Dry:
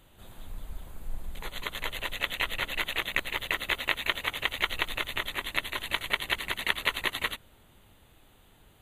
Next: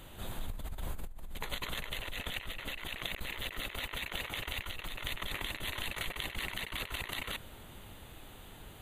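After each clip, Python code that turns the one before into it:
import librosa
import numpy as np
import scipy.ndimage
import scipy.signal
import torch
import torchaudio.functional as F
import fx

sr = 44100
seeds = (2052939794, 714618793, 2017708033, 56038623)

y = fx.over_compress(x, sr, threshold_db=-41.0, ratio=-1.0)
y = y * librosa.db_to_amplitude(1.0)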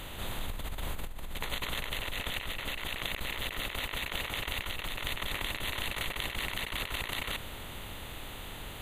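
y = fx.bin_compress(x, sr, power=0.6)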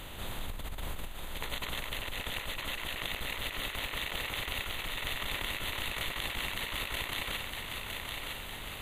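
y = fx.echo_thinned(x, sr, ms=959, feedback_pct=60, hz=420.0, wet_db=-4)
y = y * librosa.db_to_amplitude(-2.0)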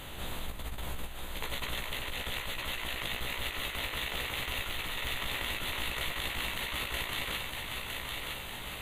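y = 10.0 ** (-21.0 / 20.0) * np.tanh(x / 10.0 ** (-21.0 / 20.0))
y = fx.doubler(y, sr, ms=16.0, db=-5)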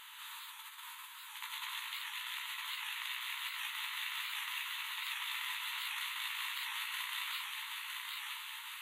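y = fx.brickwall_highpass(x, sr, low_hz=870.0)
y = fx.rev_gated(y, sr, seeds[0], gate_ms=340, shape='flat', drr_db=3.0)
y = fx.record_warp(y, sr, rpm=78.0, depth_cents=100.0)
y = y * librosa.db_to_amplitude(-5.5)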